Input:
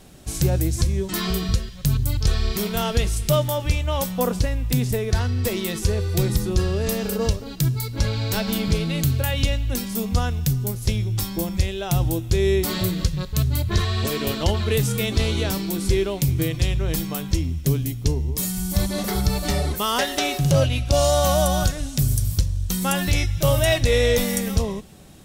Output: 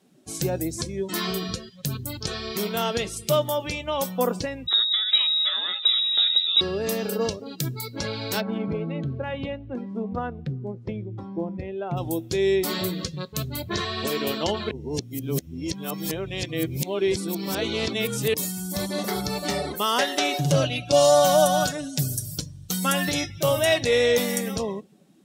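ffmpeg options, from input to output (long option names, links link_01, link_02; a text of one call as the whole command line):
ffmpeg -i in.wav -filter_complex "[0:a]asettb=1/sr,asplit=3[link_01][link_02][link_03];[link_01]atrim=end=4.674[link_04];[link_02]atrim=start=4.67:end=6.61,asetpts=PTS-STARTPTS,afade=type=in:duration=0.004:curve=qsin,afade=type=out:start_time=1.936:duration=0.004:curve=qsin,lowpass=frequency=3300:width_type=q:width=0.5098,lowpass=frequency=3300:width_type=q:width=0.6013,lowpass=frequency=3300:width_type=q:width=0.9,lowpass=frequency=3300:width_type=q:width=2.563,afreqshift=-3900[link_05];[link_03]atrim=start=6.606[link_06];[link_04][link_05]acrossfade=duration=0.004:curve1=hsin:curve2=qsin[link_07];[link_07][link_06]acrossfade=duration=0.004:curve1=qsin:curve2=hsin,asplit=3[link_08][link_09][link_10];[link_08]afade=type=out:start_time=8.4:duration=0.02[link_11];[link_09]adynamicsmooth=sensitivity=0.5:basefreq=1400,afade=type=in:start_time=8.4:duration=0.02,afade=type=out:start_time=11.96:duration=0.02[link_12];[link_10]afade=type=in:start_time=11.96:duration=0.02[link_13];[link_11][link_12][link_13]amix=inputs=3:normalize=0,asettb=1/sr,asplit=3[link_14][link_15][link_16];[link_14]atrim=end=20.334[link_17];[link_15]atrim=start=20.33:end=23.3,asetpts=PTS-STARTPTS,afade=type=in:duration=0.004:curve=qsin,afade=type=out:start_time=2.966:duration=0.004:curve=qsin,aecho=1:1:6.7:0.65,atrim=end_sample=130977[link_18];[link_16]atrim=start=23.296[link_19];[link_17][link_18]acrossfade=duration=0.004:curve1=hsin:curve2=qsin[link_20];[link_20][link_19]acrossfade=duration=0.004:curve1=qsin:curve2=hsin,asplit=3[link_21][link_22][link_23];[link_21]atrim=end=14.712[link_24];[link_22]atrim=start=14.708:end=18.342,asetpts=PTS-STARTPTS,areverse[link_25];[link_23]atrim=start=18.338[link_26];[link_24][link_25]acrossfade=duration=0.004:curve1=hsin:curve2=hsin[link_27];[link_27][link_26]acrossfade=duration=0.004:curve1=hsin:curve2=hsin,highpass=220,afftdn=noise_reduction=15:noise_floor=-40,highshelf=frequency=8700:gain=-4" out.wav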